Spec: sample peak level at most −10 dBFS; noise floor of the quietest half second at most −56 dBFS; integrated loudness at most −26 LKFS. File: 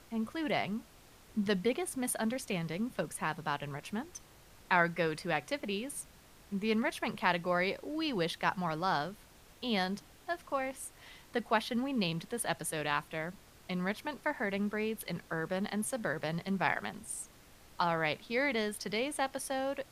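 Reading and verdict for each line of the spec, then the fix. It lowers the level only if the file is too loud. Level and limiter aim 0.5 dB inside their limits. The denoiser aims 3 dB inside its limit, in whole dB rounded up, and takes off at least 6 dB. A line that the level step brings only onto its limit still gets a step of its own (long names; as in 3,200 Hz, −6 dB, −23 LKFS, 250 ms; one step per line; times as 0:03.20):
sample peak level −12.5 dBFS: in spec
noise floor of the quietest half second −58 dBFS: in spec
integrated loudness −34.5 LKFS: in spec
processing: no processing needed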